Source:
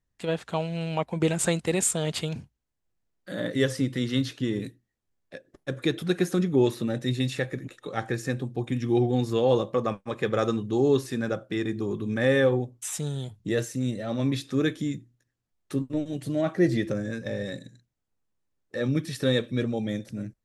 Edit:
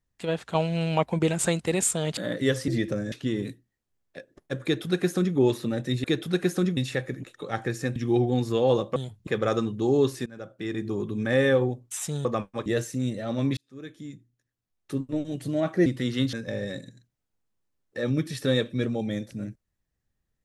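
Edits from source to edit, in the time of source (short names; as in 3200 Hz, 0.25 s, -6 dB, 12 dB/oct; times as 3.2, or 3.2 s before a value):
0.55–1.19 gain +4 dB
2.17–3.31 cut
3.82–4.29 swap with 16.67–17.11
5.8–6.53 copy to 7.21
8.4–8.77 cut
9.77–10.18 swap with 13.16–13.47
11.17–11.8 fade in, from -23.5 dB
14.38–16.03 fade in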